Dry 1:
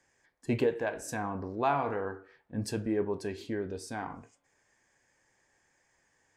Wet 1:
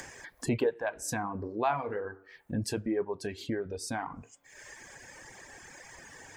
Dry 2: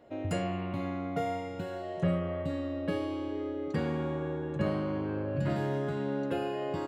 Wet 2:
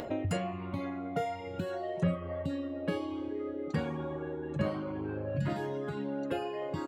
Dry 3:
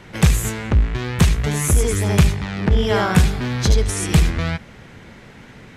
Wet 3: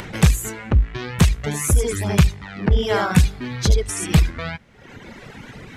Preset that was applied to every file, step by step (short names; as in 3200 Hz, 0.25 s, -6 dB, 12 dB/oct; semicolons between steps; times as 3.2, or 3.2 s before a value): upward compressor, threshold -26 dBFS; reverb removal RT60 1.6 s